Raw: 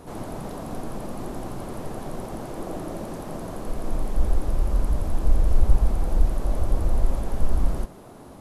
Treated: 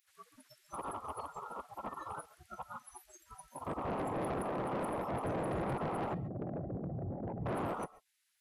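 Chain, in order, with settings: 6.14–7.46 formant sharpening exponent 2; dynamic EQ 230 Hz, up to -6 dB, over -49 dBFS, Q 2.7; spectral gate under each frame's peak -25 dB weak; spectral noise reduction 29 dB; in parallel at -2.5 dB: compressor, threshold -53 dBFS, peak gain reduction 18.5 dB; on the sum: soft clip -38.5 dBFS, distortion -9 dB; on a send at -18 dB: reverb, pre-delay 0.115 s; on the sum: gain +6 dB

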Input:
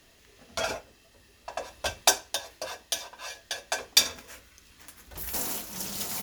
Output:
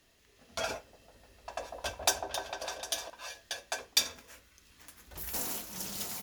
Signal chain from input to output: AGC gain up to 4 dB; 0.78–3.1 repeats that get brighter 0.151 s, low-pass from 750 Hz, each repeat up 1 oct, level -3 dB; gain -8 dB

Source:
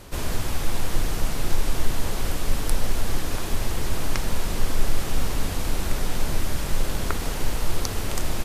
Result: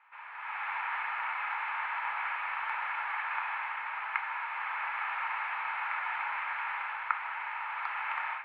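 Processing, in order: elliptic band-pass 900–2400 Hz, stop band 50 dB; AGC gain up to 14 dB; reverb RT60 0.90 s, pre-delay 23 ms, DRR 10 dB; gain -9 dB

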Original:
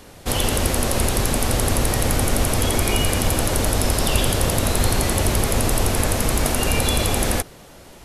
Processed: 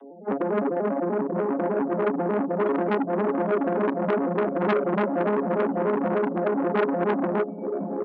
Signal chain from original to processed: arpeggiated vocoder major triad, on C#3, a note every 99 ms; 4.59–5.09 comb 5.3 ms, depth 71%; echo 0.103 s -10 dB; spectral gate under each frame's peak -15 dB strong; bell 470 Hz +7.5 dB 2.4 oct; diffused feedback echo 0.94 s, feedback 51%, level -7 dB; reverb removal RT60 1.2 s; steep high-pass 190 Hz 72 dB/oct; core saturation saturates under 1300 Hz

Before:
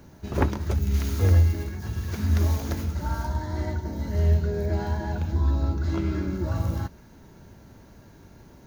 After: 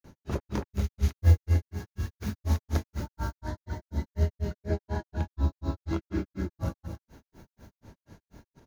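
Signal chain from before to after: echo 0.18 s -6.5 dB; grains 0.159 s, grains 4.1/s, pitch spread up and down by 0 st

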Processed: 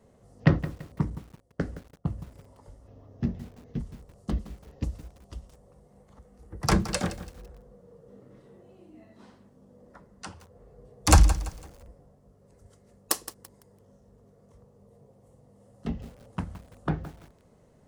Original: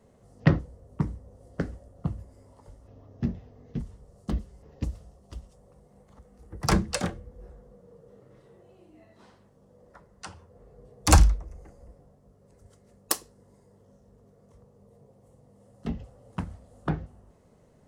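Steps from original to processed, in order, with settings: 1.1–2.19 gate -41 dBFS, range -17 dB; 8.08–10.32 bell 240 Hz +8 dB 0.76 oct; lo-fi delay 0.168 s, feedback 35%, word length 7-bit, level -13.5 dB

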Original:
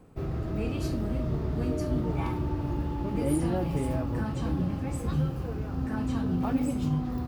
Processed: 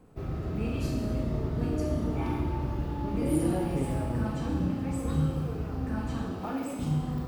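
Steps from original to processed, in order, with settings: 6.31–6.79 HPF 330 Hz 12 dB/oct; Schroeder reverb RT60 1.3 s, combs from 26 ms, DRR 0.5 dB; gain -3 dB

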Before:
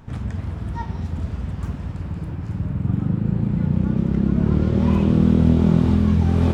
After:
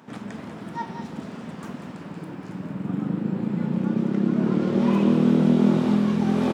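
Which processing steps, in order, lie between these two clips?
HPF 200 Hz 24 dB/oct; on a send: echo 0.191 s -10.5 dB; on the sum: gain +1 dB

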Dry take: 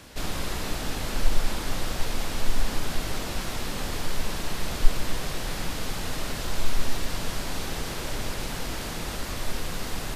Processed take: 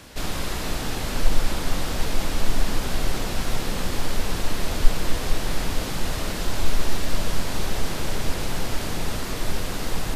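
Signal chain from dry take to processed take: dark delay 0.456 s, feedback 81%, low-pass 780 Hz, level -6.5 dB; gain +2.5 dB

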